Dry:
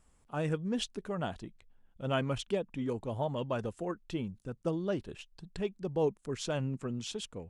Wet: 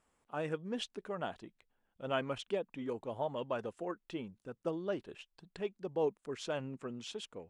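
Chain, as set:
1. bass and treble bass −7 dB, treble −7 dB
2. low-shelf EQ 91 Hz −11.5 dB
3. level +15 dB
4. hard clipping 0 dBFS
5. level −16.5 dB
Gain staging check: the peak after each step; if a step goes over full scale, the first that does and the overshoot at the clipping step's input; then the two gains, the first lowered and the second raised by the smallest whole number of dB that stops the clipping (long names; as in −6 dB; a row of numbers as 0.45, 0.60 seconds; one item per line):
−18.5, −18.0, −3.0, −3.0, −19.5 dBFS
no step passes full scale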